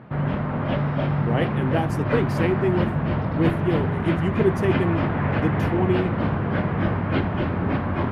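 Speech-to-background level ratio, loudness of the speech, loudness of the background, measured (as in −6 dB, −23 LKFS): −2.0 dB, −26.0 LKFS, −24.0 LKFS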